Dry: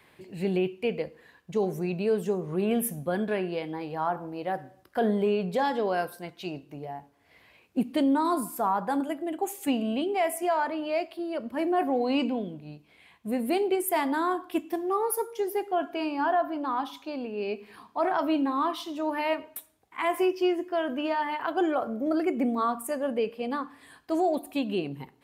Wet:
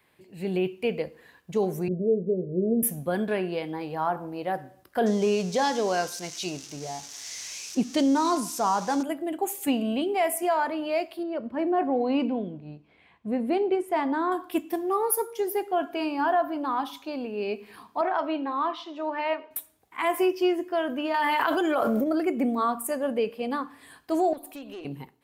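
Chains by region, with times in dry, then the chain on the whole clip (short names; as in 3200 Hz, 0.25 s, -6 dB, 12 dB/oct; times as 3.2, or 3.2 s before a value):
1.88–2.83 steep low-pass 640 Hz 96 dB/oct + doubler 22 ms -11.5 dB
5.06–9.03 switching spikes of -32.5 dBFS + synth low-pass 6000 Hz, resonance Q 3.9
11.23–14.32 LPF 6000 Hz + high shelf 2600 Hz -11.5 dB
18.01–19.51 HPF 390 Hz + air absorption 190 m
21.14–22.04 tilt +1.5 dB/oct + notch 750 Hz, Q 15 + fast leveller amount 100%
24.33–24.85 HPF 270 Hz 24 dB/oct + compressor 2.5:1, threshold -39 dBFS + tube stage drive 35 dB, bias 0.3
whole clip: high shelf 9900 Hz +7 dB; AGC gain up to 9 dB; gain -7.5 dB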